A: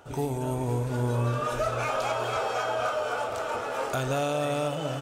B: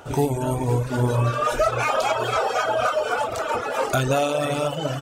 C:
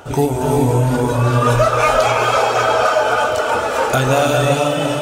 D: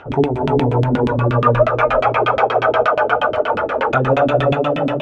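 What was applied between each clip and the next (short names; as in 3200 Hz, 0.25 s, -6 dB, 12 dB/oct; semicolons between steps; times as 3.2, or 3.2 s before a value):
reverb removal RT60 1.5 s; gain +9 dB
non-linear reverb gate 0.43 s rising, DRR 1 dB; gain +5 dB
LFO low-pass saw down 8.4 Hz 210–3200 Hz; gain -2.5 dB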